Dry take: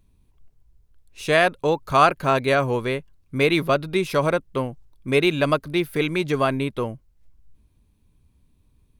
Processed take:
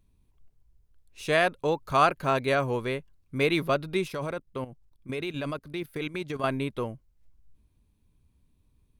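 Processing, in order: 4.08–6.44 level quantiser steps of 13 dB; gain -5.5 dB

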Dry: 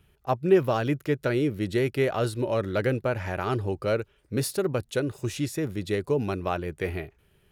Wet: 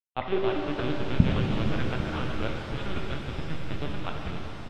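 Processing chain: level-crossing sampler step -24 dBFS; bell 410 Hz -14.5 dB 1.9 oct; notch 2000 Hz, Q 7; tempo 1.6×; high-pass sweep 470 Hz -> 180 Hz, 0.01–1.11; LPC vocoder at 8 kHz pitch kept; shimmer reverb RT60 3.6 s, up +7 st, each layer -8 dB, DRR 0.5 dB; gain +1.5 dB

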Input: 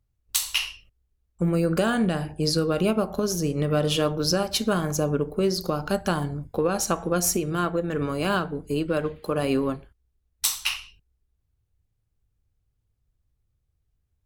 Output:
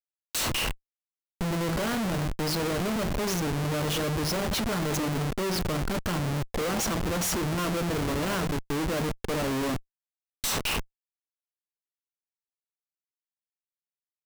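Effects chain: 4.84–5.33 bell 530 Hz -> 110 Hz +12.5 dB 1 oct; Schmitt trigger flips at -33 dBFS; gain -1.5 dB

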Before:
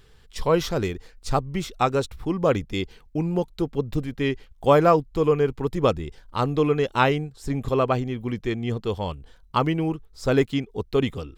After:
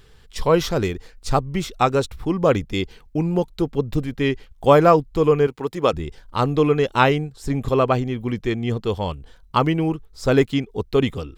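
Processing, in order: 5.47–5.93 HPF 370 Hz 6 dB/oct; gain +3.5 dB

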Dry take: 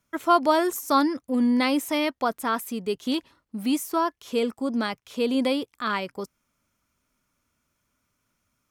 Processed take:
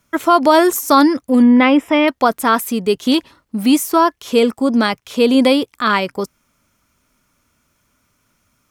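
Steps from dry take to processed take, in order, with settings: 1.42–2.08 polynomial smoothing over 25 samples; maximiser +12.5 dB; gain -1 dB

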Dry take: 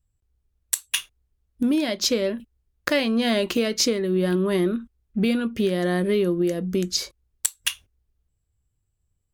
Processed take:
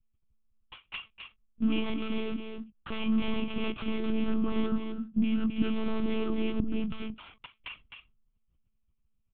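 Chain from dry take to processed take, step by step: sample sorter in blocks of 8 samples; limiter -17 dBFS, peak gain reduction 11.5 dB; fixed phaser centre 2700 Hz, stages 8; on a send: echo 0.261 s -6.5 dB; on the sum: monotone LPC vocoder at 8 kHz 220 Hz

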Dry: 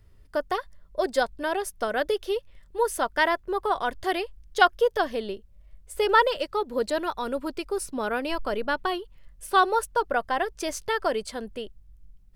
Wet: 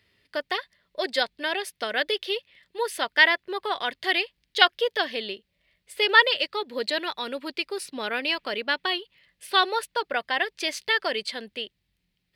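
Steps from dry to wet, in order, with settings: HPF 180 Hz 12 dB/oct; band shelf 2900 Hz +13.5 dB; gain -3.5 dB

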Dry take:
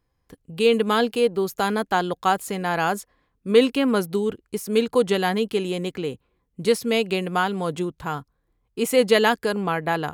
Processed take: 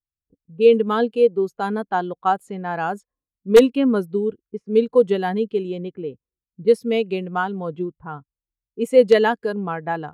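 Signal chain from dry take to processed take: wrapped overs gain 5.5 dB; low-pass opened by the level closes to 450 Hz, open at -19 dBFS; spectral expander 1.5:1; gain +1.5 dB

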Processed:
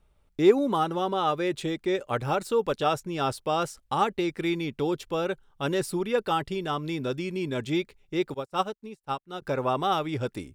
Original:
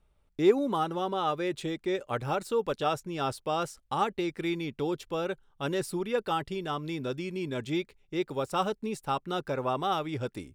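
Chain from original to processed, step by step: 8.34–9.42 upward expander 2.5:1, over -44 dBFS; gain +3.5 dB

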